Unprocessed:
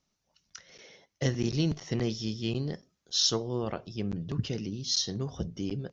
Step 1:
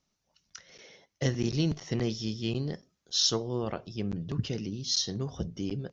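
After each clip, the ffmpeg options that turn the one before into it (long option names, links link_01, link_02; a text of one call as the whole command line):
ffmpeg -i in.wav -af anull out.wav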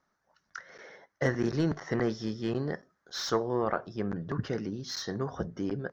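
ffmpeg -i in.wav -filter_complex "[0:a]asplit=2[link_01][link_02];[link_02]highpass=frequency=720:poles=1,volume=14dB,asoftclip=type=tanh:threshold=-12dB[link_03];[link_01][link_03]amix=inputs=2:normalize=0,lowpass=frequency=2700:poles=1,volume=-6dB,highshelf=frequency=2100:width_type=q:width=3:gain=-8" out.wav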